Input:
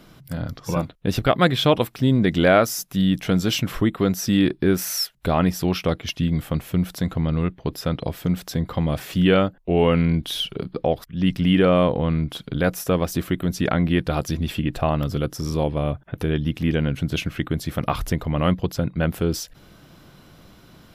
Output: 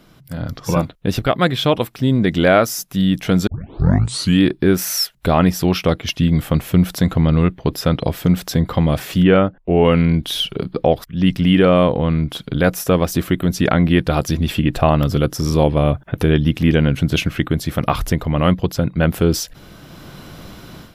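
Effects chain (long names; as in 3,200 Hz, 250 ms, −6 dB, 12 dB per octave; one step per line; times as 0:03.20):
0:09.23–0:09.85: low-pass filter 2,300 Hz 12 dB per octave
automatic gain control gain up to 13 dB
0:03.47: tape start 0.95 s
level −1 dB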